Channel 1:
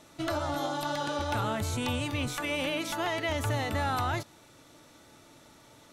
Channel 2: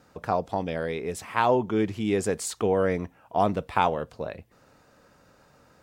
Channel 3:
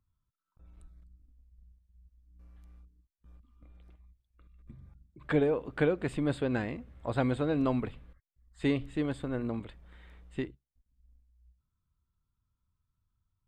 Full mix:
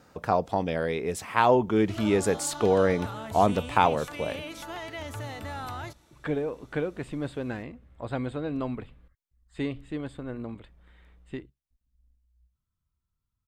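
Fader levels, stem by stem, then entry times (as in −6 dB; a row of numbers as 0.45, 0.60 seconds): −7.0, +1.5, −2.5 decibels; 1.70, 0.00, 0.95 seconds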